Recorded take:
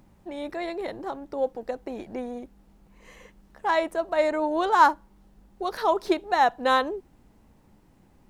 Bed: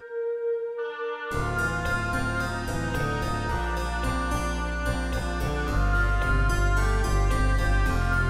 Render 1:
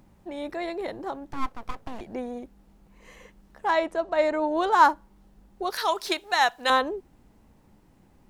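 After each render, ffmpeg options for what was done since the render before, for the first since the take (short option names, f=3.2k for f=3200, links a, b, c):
-filter_complex "[0:a]asettb=1/sr,asplit=3[a][b][c];[a]atrim=end=1.314[d];[b]atrim=start=1.31:end=2.01,asetpts=PTS-STARTPTS,afade=t=in:d=0.004:c=qsin,afade=t=out:st=0.696:d=0.004:c=qsin,aeval=exprs='abs(val(0))':c=same[e];[c]atrim=start=2.006[f];[d][e]acrossfade=d=0.004:c1=hsin:c2=qsin[g];[g][f]acrossfade=d=0.004:c1=qsin:c2=hsin,asettb=1/sr,asplit=3[h][i][j];[h]atrim=end=3.734[k];[i]atrim=start=3.73:end=4.57,asetpts=PTS-STARTPTS,afade=t=in:d=0.004:c=qsin,afade=t=out:st=0.836:d=0.004:c=qsin,lowpass=7.3k[l];[j]atrim=start=4.566[m];[k][l]acrossfade=d=0.004:c1=hsin:c2=qsin[n];[n][m]acrossfade=d=0.004:c1=qsin:c2=hsin,asettb=1/sr,asplit=3[o][p][q];[o]atrim=end=5.704[r];[p]atrim=start=5.7:end=6.7,asetpts=PTS-STARTPTS,afade=t=in:d=0.004:c=qsin,afade=t=out:st=0.996:d=0.004:c=qsin,tiltshelf=f=1.1k:g=-10[s];[q]atrim=start=6.696[t];[r][s]acrossfade=d=0.004:c1=hsin:c2=qsin[u];[u][t]acrossfade=d=0.004:c1=qsin:c2=hsin"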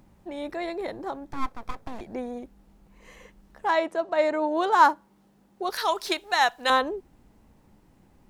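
-filter_complex "[0:a]asettb=1/sr,asplit=3[a][b][c];[a]atrim=end=0.674[d];[b]atrim=start=0.67:end=2.37,asetpts=PTS-STARTPTS,afade=t=in:d=0.004:c=qsin,afade=t=out:st=1.696:d=0.004:c=qsin,bandreject=f=2.9k:w=12[e];[c]atrim=start=2.366[f];[d][e]acrossfade=d=0.004:c1=hsin:c2=qsin[g];[g][f]acrossfade=d=0.004:c1=qsin:c2=hsin,asettb=1/sr,asplit=3[h][i][j];[h]atrim=end=3.684[k];[i]atrim=start=3.68:end=5.69,asetpts=PTS-STARTPTS,afade=t=in:d=0.004:c=qsin,afade=t=out:st=2.006:d=0.004:c=qsin,highpass=140[l];[j]atrim=start=5.686[m];[k][l]acrossfade=d=0.004:c1=hsin:c2=qsin[n];[n][m]acrossfade=d=0.004:c1=qsin:c2=hsin"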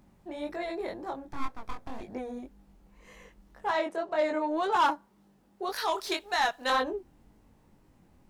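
-af "flanger=delay=19.5:depth=4.6:speed=1.9,asoftclip=type=tanh:threshold=-18.5dB"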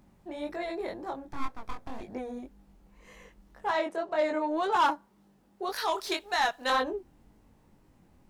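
-af anull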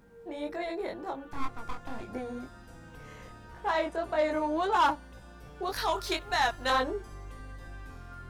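-filter_complex "[1:a]volume=-21.5dB[a];[0:a][a]amix=inputs=2:normalize=0"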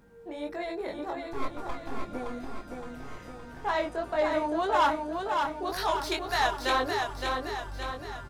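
-af "aecho=1:1:567|1134|1701|2268|2835|3402|3969:0.596|0.31|0.161|0.0838|0.0436|0.0226|0.0118"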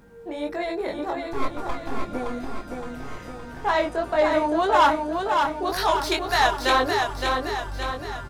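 -af "volume=6.5dB"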